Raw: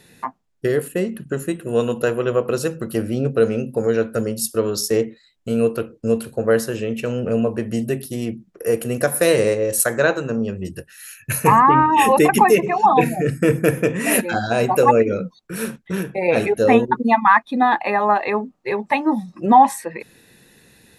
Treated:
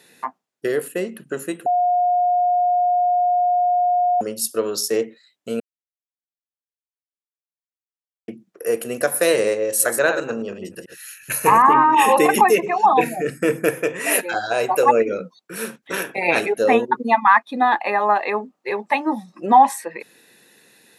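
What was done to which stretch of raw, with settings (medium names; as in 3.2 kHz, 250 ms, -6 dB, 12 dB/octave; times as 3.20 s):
1.66–4.21 s: bleep 715 Hz -14 dBFS
5.60–8.28 s: mute
9.66–12.41 s: chunks repeated in reverse 109 ms, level -8 dB
13.69–14.86 s: peaking EQ 220 Hz -13 dB 0.49 oct
15.82–16.39 s: spectral peaks clipped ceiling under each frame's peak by 16 dB
whole clip: Bessel high-pass 350 Hz, order 2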